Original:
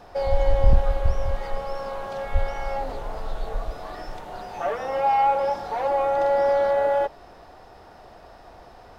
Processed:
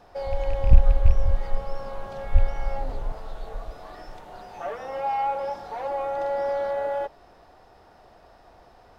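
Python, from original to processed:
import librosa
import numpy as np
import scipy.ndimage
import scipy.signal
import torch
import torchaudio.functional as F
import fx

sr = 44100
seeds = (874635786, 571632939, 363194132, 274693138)

y = fx.rattle_buzz(x, sr, strikes_db=-18.0, level_db=-25.0)
y = fx.low_shelf(y, sr, hz=180.0, db=11.5, at=(0.71, 3.12))
y = F.gain(torch.from_numpy(y), -6.0).numpy()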